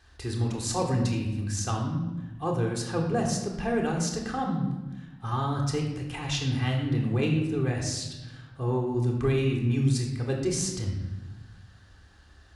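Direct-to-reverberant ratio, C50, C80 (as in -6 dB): -0.5 dB, 4.5 dB, 7.0 dB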